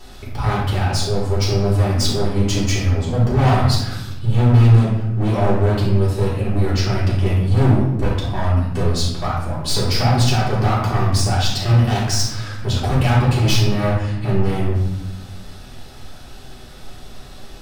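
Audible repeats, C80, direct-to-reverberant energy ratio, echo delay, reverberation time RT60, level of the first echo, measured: no echo audible, 5.0 dB, −8.5 dB, no echo audible, 1.0 s, no echo audible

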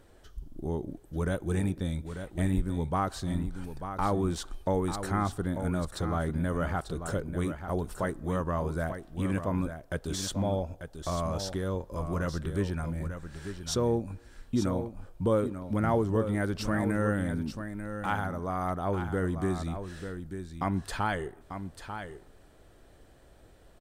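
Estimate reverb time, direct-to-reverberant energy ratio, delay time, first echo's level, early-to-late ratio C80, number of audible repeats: no reverb audible, no reverb audible, 892 ms, −9.0 dB, no reverb audible, 1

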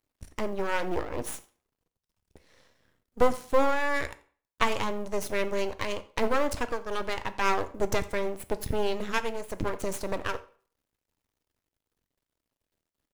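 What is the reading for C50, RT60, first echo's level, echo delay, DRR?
16.5 dB, 0.45 s, −22.5 dB, 87 ms, 11.0 dB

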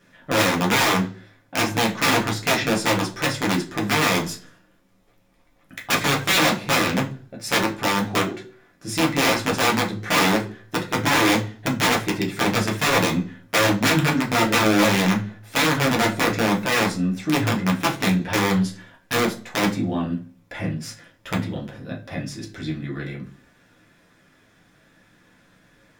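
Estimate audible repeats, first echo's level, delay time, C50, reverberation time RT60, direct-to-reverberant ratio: no echo audible, no echo audible, no echo audible, 12.5 dB, 0.40 s, −2.0 dB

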